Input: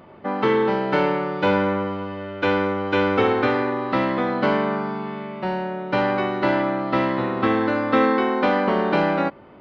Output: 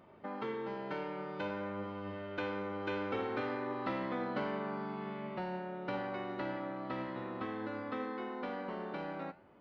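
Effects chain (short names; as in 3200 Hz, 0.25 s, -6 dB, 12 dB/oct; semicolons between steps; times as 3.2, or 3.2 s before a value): Doppler pass-by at 4.08, 7 m/s, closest 8.8 m; compressor 2.5:1, threshold -38 dBFS, peak gain reduction 14.5 dB; flange 0.52 Hz, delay 8.7 ms, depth 9.3 ms, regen +86%; gain +2 dB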